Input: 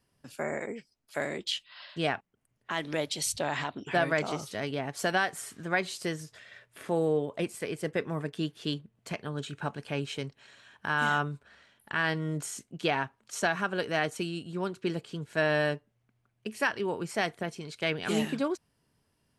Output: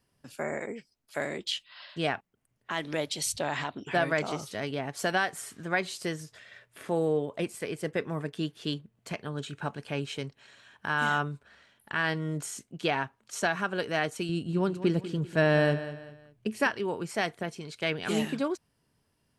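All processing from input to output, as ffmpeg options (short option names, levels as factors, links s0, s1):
-filter_complex "[0:a]asettb=1/sr,asplit=3[s0][s1][s2];[s0]atrim=end=14.294[s3];[s1]atrim=start=14.29:end=16.7,asetpts=PTS-STARTPTS,afade=t=in:d=0.004:c=qsin,afade=t=out:st=2.406:d=0.004:c=qsin,lowshelf=f=430:g=8.5,aecho=1:1:195|390|585:0.224|0.0784|0.0274,atrim=end_sample=106281[s4];[s2]atrim=start=16.696[s5];[s3][s4]acrossfade=d=0.004:c1=hsin:c2=qsin[s6];[s6][s5]acrossfade=d=0.004:c1=qsin:c2=hsin"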